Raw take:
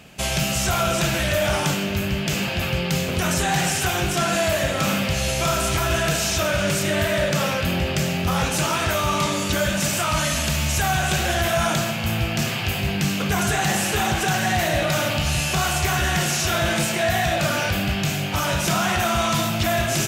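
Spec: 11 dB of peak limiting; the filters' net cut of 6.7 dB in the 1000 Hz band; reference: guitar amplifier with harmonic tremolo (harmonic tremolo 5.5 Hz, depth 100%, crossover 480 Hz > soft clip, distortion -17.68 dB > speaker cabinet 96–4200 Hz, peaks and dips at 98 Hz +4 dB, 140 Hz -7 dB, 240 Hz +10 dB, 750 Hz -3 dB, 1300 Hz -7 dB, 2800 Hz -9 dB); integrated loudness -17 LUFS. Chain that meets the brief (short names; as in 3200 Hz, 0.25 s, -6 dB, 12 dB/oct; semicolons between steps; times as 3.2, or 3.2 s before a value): bell 1000 Hz -5 dB; limiter -21.5 dBFS; harmonic tremolo 5.5 Hz, depth 100%, crossover 480 Hz; soft clip -28.5 dBFS; speaker cabinet 96–4200 Hz, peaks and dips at 98 Hz +4 dB, 140 Hz -7 dB, 240 Hz +10 dB, 750 Hz -3 dB, 1300 Hz -7 dB, 2800 Hz -9 dB; gain +20.5 dB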